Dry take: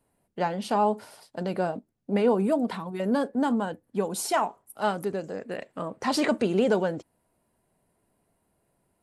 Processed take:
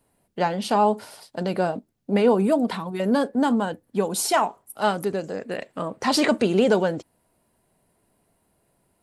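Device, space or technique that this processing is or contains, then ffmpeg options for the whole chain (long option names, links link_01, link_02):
presence and air boost: -af "equalizer=frequency=4000:width_type=o:width=1.4:gain=3,highshelf=frequency=10000:gain=3.5,volume=4dB"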